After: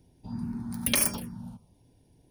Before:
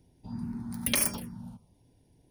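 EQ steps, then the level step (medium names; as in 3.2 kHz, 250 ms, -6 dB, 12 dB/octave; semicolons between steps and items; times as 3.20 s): band-stop 2 kHz, Q 20; +2.0 dB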